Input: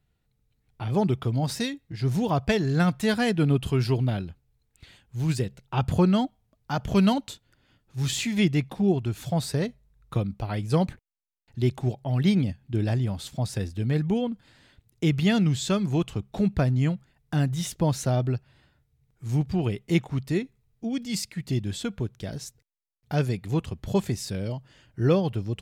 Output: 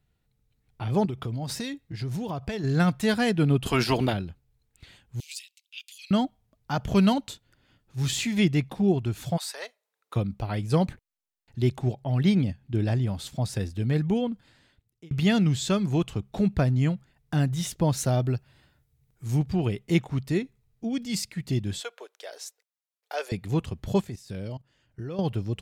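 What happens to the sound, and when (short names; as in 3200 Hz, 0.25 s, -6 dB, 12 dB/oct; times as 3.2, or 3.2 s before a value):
1.05–2.64 compressor 10:1, threshold -27 dBFS
3.65–4.12 spectral limiter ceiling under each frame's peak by 19 dB
5.2–6.11 steep high-pass 2400 Hz 48 dB/oct
9.36–10.15 HPF 900 Hz -> 340 Hz 24 dB/oct
11.78–13.09 high shelf 5800 Hz -3.5 dB
14.31–15.11 fade out
17.97–19.39 high shelf 7600 Hz +7.5 dB
21.8–23.32 steep high-pass 470 Hz
24.01–25.19 level quantiser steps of 17 dB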